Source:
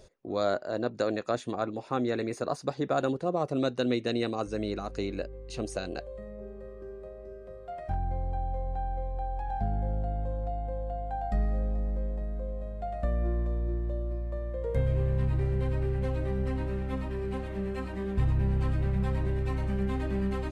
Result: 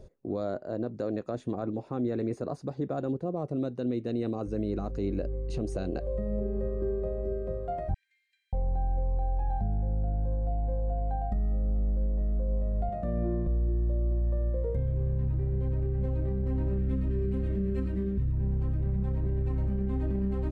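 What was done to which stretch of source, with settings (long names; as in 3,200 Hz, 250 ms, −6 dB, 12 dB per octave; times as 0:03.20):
0:07.94–0:08.53: Butterworth high-pass 1,800 Hz 96 dB per octave
0:12.89–0:13.47: high-pass filter 110 Hz
0:16.78–0:18.33: parametric band 820 Hz −14.5 dB
whole clip: speech leveller 0.5 s; tilt shelving filter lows +9 dB, about 750 Hz; brickwall limiter −19 dBFS; level −3 dB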